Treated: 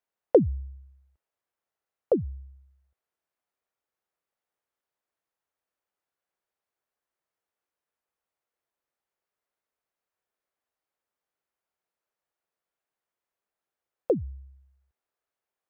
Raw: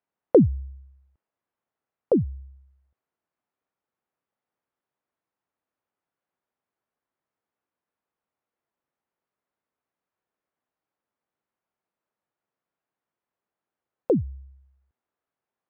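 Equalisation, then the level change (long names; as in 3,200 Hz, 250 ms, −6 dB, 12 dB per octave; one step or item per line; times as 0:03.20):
graphic EQ with 10 bands 125 Hz −7 dB, 250 Hz −8 dB, 1,000 Hz −3 dB
dynamic equaliser 1,200 Hz, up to +4 dB, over −38 dBFS, Q 0.78
0.0 dB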